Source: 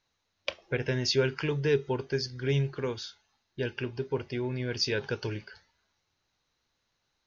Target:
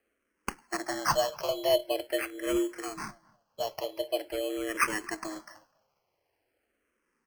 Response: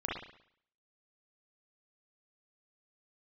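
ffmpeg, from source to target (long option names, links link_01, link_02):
-filter_complex "[0:a]afreqshift=210,bass=frequency=250:gain=-7,treble=frequency=4000:gain=5,acrusher=samples=12:mix=1:aa=0.000001,asplit=2[link_01][link_02];[link_02]adelay=251,lowpass=frequency=1800:poles=1,volume=-23.5dB,asplit=2[link_03][link_04];[link_04]adelay=251,lowpass=frequency=1800:poles=1,volume=0.17[link_05];[link_03][link_05]amix=inputs=2:normalize=0[link_06];[link_01][link_06]amix=inputs=2:normalize=0,asplit=2[link_07][link_08];[link_08]afreqshift=-0.45[link_09];[link_07][link_09]amix=inputs=2:normalize=1,volume=1.5dB"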